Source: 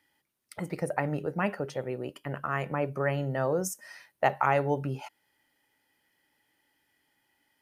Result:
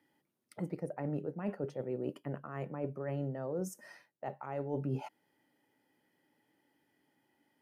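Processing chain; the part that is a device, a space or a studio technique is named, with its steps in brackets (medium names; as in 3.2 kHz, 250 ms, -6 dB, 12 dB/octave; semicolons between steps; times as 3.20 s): high-pass 170 Hz 12 dB/octave; compression on the reversed sound (reverse; compression 8:1, threshold -38 dBFS, peak gain reduction 19 dB; reverse); tilt shelf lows +8.5 dB, about 770 Hz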